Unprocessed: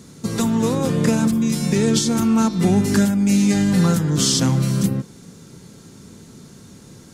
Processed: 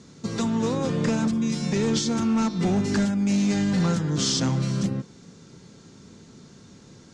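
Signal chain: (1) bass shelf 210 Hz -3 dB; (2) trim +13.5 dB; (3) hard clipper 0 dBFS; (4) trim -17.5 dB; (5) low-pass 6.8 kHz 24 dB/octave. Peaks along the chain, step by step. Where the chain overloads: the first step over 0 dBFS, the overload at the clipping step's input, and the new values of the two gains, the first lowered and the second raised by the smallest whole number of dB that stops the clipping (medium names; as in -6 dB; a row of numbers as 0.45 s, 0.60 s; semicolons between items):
-6.0 dBFS, +7.5 dBFS, 0.0 dBFS, -17.5 dBFS, -15.5 dBFS; step 2, 7.5 dB; step 2 +5.5 dB, step 4 -9.5 dB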